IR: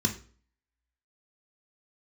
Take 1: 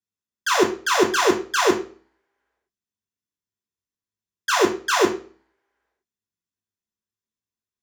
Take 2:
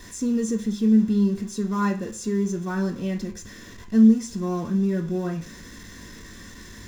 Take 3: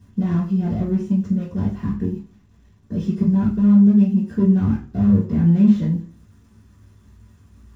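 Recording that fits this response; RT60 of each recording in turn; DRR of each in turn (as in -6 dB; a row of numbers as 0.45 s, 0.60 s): 2; 0.45 s, 0.45 s, 0.45 s; -1.0 dB, 3.5 dB, -8.5 dB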